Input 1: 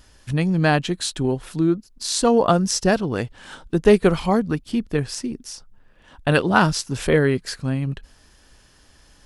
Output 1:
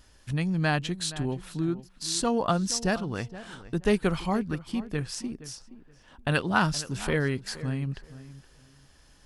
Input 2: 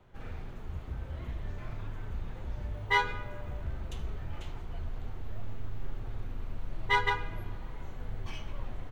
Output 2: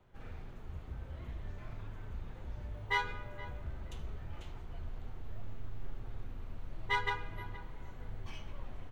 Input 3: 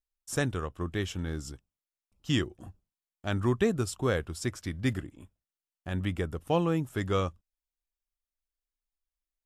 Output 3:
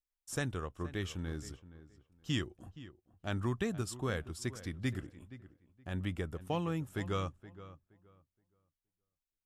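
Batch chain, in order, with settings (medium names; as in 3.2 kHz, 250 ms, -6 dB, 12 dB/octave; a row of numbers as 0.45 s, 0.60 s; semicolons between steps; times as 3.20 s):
dynamic bell 440 Hz, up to -6 dB, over -31 dBFS, Q 0.85; filtered feedback delay 471 ms, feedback 22%, low-pass 2.3 kHz, level -15.5 dB; trim -5.5 dB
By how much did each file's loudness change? -8.0 LU, -5.5 LU, -7.0 LU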